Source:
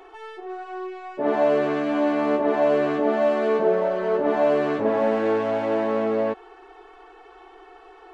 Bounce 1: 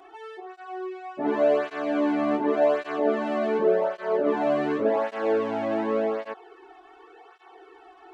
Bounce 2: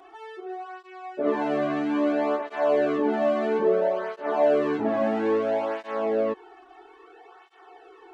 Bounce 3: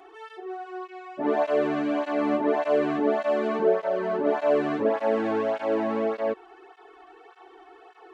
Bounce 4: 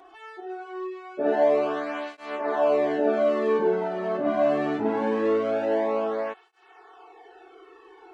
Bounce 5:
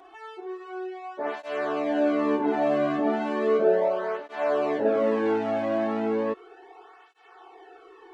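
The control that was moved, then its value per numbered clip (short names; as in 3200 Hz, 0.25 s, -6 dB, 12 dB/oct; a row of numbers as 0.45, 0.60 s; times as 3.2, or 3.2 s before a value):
tape flanging out of phase, nulls at: 0.88, 0.6, 1.7, 0.23, 0.35 Hz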